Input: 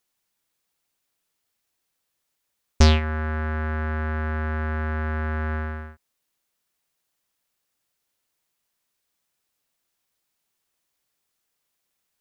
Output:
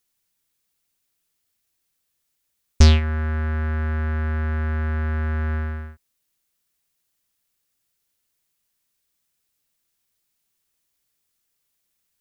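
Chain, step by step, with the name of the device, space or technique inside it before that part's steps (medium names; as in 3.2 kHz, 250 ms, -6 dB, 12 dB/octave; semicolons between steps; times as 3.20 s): smiley-face EQ (bass shelf 130 Hz +5.5 dB; peaking EQ 780 Hz -4.5 dB 1.7 oct; treble shelf 6.7 kHz +4.5 dB)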